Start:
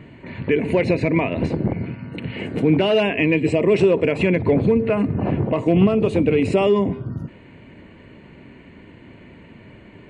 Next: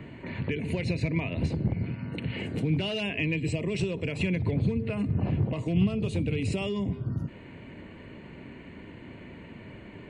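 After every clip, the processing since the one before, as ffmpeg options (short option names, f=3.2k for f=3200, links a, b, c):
-filter_complex "[0:a]acrossover=split=160|3000[a][b][c];[b]acompressor=threshold=-35dB:ratio=4[d];[a][d][c]amix=inputs=3:normalize=0,volume=-1dB"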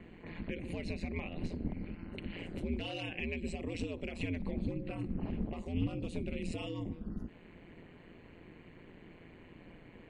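-af "aeval=exprs='val(0)*sin(2*PI*85*n/s)':c=same,volume=-6.5dB"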